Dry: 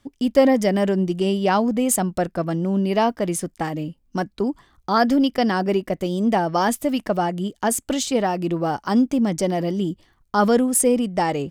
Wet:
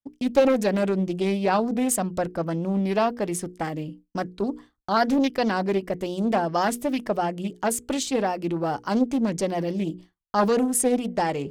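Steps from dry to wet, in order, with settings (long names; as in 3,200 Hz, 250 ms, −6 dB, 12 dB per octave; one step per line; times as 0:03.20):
mains-hum notches 60/120/180/240/300/360/420/480 Hz
downward expander −37 dBFS
highs frequency-modulated by the lows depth 0.43 ms
level −3 dB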